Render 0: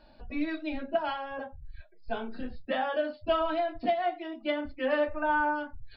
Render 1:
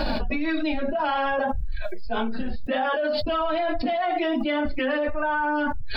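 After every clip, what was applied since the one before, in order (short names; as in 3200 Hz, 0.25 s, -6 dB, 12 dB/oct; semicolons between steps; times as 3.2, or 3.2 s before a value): flange 1.8 Hz, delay 3.5 ms, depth 1.9 ms, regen +38%; fast leveller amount 100%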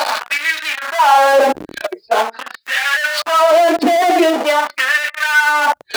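power-law curve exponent 0.35; LFO high-pass sine 0.44 Hz 320–1900 Hz; gain +3.5 dB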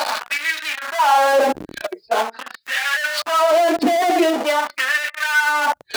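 tone controls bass +5 dB, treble +2 dB; gain -4.5 dB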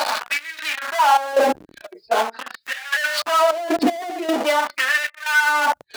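step gate "xx.xxx.x..xx" 77 bpm -12 dB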